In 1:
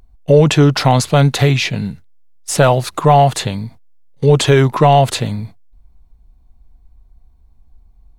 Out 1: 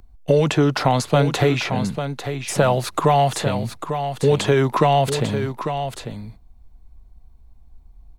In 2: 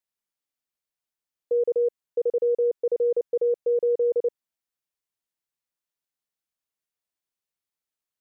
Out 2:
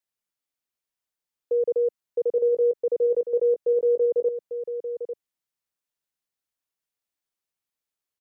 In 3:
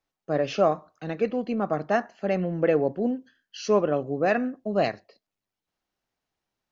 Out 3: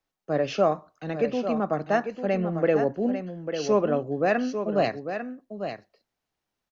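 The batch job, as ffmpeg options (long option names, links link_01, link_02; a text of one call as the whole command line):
ffmpeg -i in.wav -filter_complex "[0:a]acrossover=split=210|1600[link_01][link_02][link_03];[link_01]acompressor=threshold=-25dB:ratio=4[link_04];[link_02]acompressor=threshold=-15dB:ratio=4[link_05];[link_03]acompressor=threshold=-28dB:ratio=4[link_06];[link_04][link_05][link_06]amix=inputs=3:normalize=0,aecho=1:1:847:0.376" out.wav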